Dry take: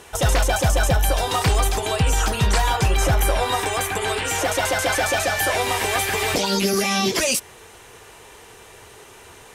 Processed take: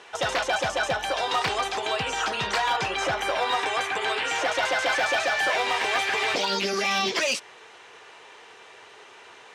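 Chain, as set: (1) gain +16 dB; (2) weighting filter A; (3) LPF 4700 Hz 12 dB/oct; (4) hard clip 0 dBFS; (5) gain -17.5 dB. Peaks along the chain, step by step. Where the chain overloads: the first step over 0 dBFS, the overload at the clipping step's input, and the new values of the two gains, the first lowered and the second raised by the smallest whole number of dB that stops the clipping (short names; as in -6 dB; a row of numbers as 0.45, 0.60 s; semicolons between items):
+7.0, +6.5, +6.0, 0.0, -17.5 dBFS; step 1, 6.0 dB; step 1 +10 dB, step 5 -11.5 dB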